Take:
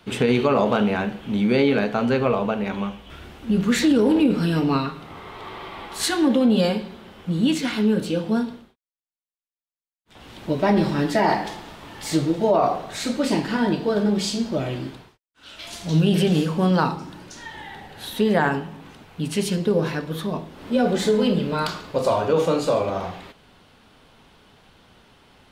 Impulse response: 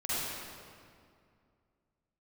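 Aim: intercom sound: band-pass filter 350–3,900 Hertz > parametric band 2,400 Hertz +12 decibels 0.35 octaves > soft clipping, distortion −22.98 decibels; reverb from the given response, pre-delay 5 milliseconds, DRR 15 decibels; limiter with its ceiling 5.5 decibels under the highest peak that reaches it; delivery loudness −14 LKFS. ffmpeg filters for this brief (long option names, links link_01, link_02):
-filter_complex "[0:a]alimiter=limit=-13dB:level=0:latency=1,asplit=2[link_01][link_02];[1:a]atrim=start_sample=2205,adelay=5[link_03];[link_02][link_03]afir=irnorm=-1:irlink=0,volume=-22.5dB[link_04];[link_01][link_04]amix=inputs=2:normalize=0,highpass=350,lowpass=3900,equalizer=frequency=2400:width_type=o:width=0.35:gain=12,asoftclip=threshold=-14dB,volume=13dB"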